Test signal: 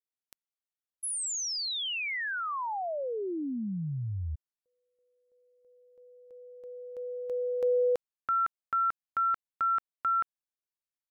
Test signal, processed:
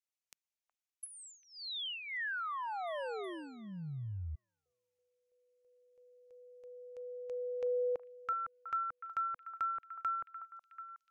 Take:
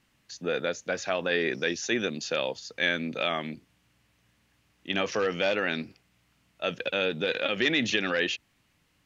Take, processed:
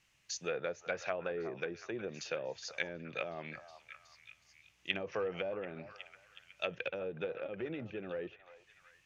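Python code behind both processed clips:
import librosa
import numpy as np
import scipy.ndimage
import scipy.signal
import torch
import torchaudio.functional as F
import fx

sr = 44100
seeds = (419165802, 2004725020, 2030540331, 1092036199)

y = fx.graphic_eq_15(x, sr, hz=(250, 2500, 6300), db=(-12, 7, 8))
y = fx.env_lowpass_down(y, sr, base_hz=510.0, full_db=-22.0)
y = fx.dynamic_eq(y, sr, hz=6700.0, q=0.91, threshold_db=-55.0, ratio=4.0, max_db=5)
y = fx.echo_stepped(y, sr, ms=368, hz=940.0, octaves=0.7, feedback_pct=70, wet_db=-8.5)
y = y * 10.0 ** (-6.0 / 20.0)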